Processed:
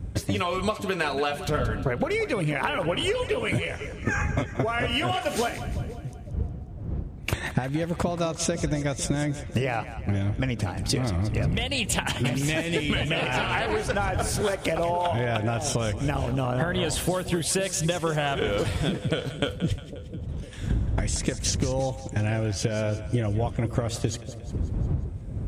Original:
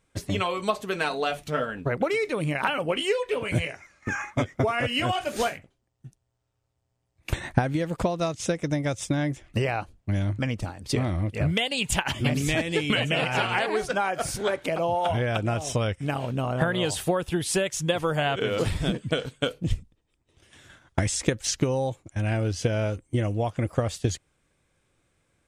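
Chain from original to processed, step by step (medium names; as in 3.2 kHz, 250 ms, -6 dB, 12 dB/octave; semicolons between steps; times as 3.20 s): wind noise 82 Hz -31 dBFS; high-pass 52 Hz; compression, threshold -31 dBFS, peak gain reduction 15 dB; on a send: two-band feedback delay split 570 Hz, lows 504 ms, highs 178 ms, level -12.5 dB; on the sum: trim +8 dB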